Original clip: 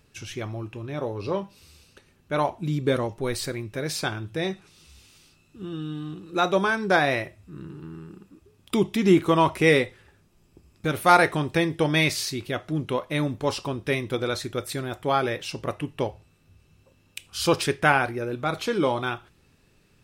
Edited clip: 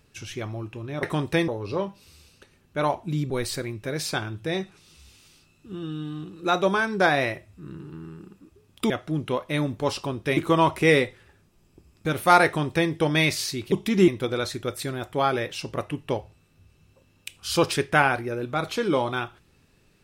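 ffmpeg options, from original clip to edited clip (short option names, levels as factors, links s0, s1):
-filter_complex "[0:a]asplit=8[s0][s1][s2][s3][s4][s5][s6][s7];[s0]atrim=end=1.032[s8];[s1]atrim=start=11.248:end=11.702[s9];[s2]atrim=start=1.028:end=2.852[s10];[s3]atrim=start=3.198:end=8.802[s11];[s4]atrim=start=12.508:end=13.982[s12];[s5]atrim=start=9.158:end=12.512[s13];[s6]atrim=start=8.798:end=9.162[s14];[s7]atrim=start=13.978[s15];[s8][s9]acrossfade=d=0.004:c1=hsin:c2=hsin[s16];[s16][s10]acrossfade=d=0.004:c1=hsin:c2=hsin[s17];[s17][s11]acrossfade=d=0.004:c1=hsin:c2=hsin[s18];[s18][s12]acrossfade=d=0.004:c1=hsin:c2=hsin[s19];[s19][s13]acrossfade=d=0.004:c1=hsin:c2=hsin[s20];[s20][s14]acrossfade=d=0.004:c1=hsin:c2=hsin[s21];[s21][s15]acrossfade=d=0.004:c1=hsin:c2=hsin"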